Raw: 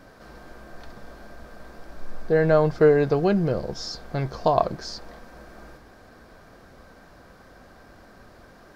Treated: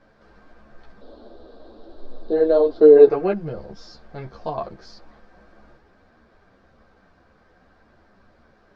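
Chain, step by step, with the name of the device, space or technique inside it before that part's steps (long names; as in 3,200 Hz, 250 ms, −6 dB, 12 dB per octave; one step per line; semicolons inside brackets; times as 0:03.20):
0:02.96–0:03.33: gain on a spectral selection 300–2,800 Hz +8 dB
0:01.01–0:03.08: drawn EQ curve 100 Hz 0 dB, 170 Hz −16 dB, 240 Hz +10 dB, 450 Hz +12 dB, 2,300 Hz −10 dB, 3,900 Hz +13 dB, 5,900 Hz −4 dB
string-machine ensemble chorus (string-ensemble chorus; low-pass filter 4,300 Hz 12 dB per octave)
level −4 dB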